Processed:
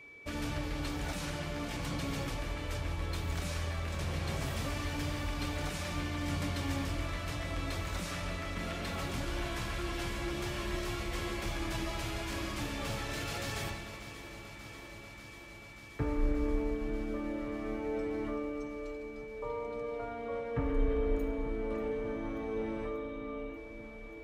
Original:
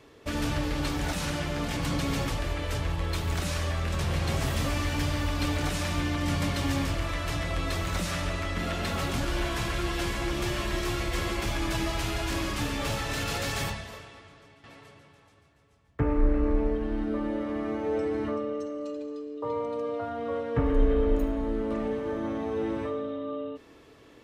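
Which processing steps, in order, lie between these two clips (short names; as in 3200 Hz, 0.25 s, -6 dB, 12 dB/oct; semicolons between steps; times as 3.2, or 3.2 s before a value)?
whine 2300 Hz -43 dBFS; echo with dull and thin repeats by turns 0.293 s, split 960 Hz, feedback 89%, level -12.5 dB; gain -7.5 dB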